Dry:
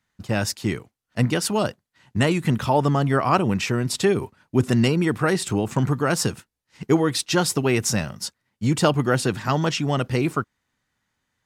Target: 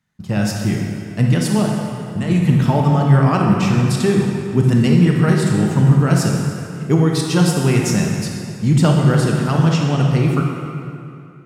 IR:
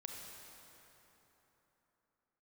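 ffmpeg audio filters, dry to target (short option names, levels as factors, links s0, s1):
-filter_complex "[0:a]equalizer=f=160:t=o:w=0.99:g=10.5,asettb=1/sr,asplit=3[s0][s1][s2];[s0]atrim=end=1.644[s3];[s1]atrim=start=1.64:end=2.3,asetpts=PTS-STARTPTS,afade=t=in:d=0.004:c=qsin,afade=t=out:st=0.656:d=0.004:c=qsin,acompressor=threshold=0.112:ratio=6[s4];[s2]atrim=start=2.296[s5];[s3][s4]acrossfade=d=0.004:c1=hsin:c2=qsin[s6];[s6][s5]acrossfade=d=0.004:c1=qsin:c2=hsin[s7];[1:a]atrim=start_sample=2205,asetrate=66150,aresample=44100[s8];[s7][s8]afir=irnorm=-1:irlink=0,volume=2.37"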